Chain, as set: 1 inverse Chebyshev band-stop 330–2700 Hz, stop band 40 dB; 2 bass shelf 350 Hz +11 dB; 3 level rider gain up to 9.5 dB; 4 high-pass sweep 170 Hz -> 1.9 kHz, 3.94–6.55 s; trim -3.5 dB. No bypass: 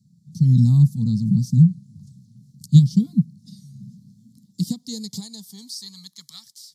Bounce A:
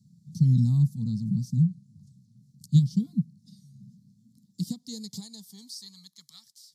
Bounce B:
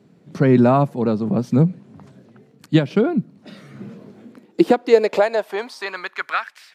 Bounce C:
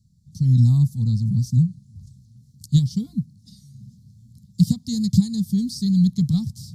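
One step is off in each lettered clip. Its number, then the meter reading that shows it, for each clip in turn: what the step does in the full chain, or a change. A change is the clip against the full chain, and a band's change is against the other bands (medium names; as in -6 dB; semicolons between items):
3, loudness change -8.0 LU; 1, momentary loudness spread change +3 LU; 4, momentary loudness spread change -12 LU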